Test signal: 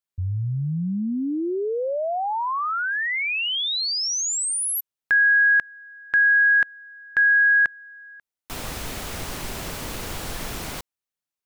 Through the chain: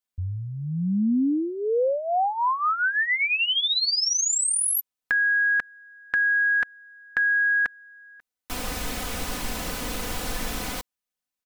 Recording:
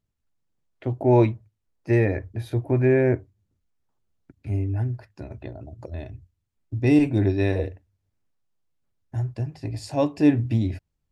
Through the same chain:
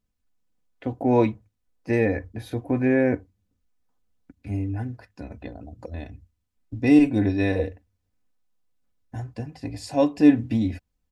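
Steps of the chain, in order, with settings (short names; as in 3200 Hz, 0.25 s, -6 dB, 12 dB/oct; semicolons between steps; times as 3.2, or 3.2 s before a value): comb 4 ms, depth 59%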